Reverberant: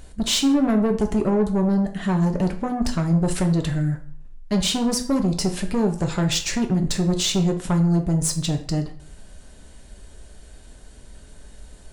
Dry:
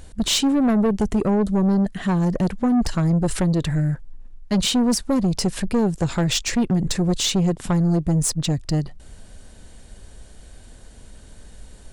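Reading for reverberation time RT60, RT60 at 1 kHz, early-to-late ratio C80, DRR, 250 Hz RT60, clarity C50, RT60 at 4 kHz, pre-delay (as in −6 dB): 0.50 s, 0.50 s, 15.5 dB, 4.0 dB, 0.50 s, 11.5 dB, 0.40 s, 3 ms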